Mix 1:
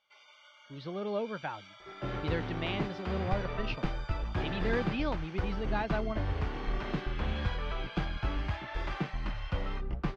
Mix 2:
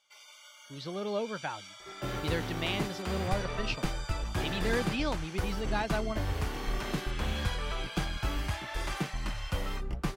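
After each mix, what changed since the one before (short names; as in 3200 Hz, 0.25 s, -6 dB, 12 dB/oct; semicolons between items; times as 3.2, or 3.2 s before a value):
master: remove air absorption 240 m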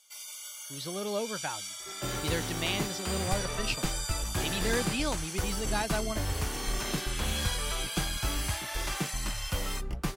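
first sound: add bell 11000 Hz +14.5 dB 1.5 oct; master: add high shelf 5900 Hz +10.5 dB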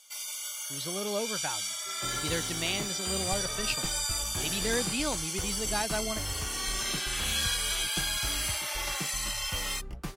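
first sound +5.5 dB; second sound -5.5 dB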